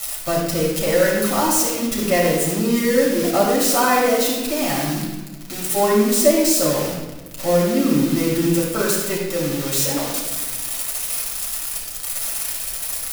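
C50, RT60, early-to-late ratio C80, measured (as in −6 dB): 0.5 dB, 1.2 s, 3.5 dB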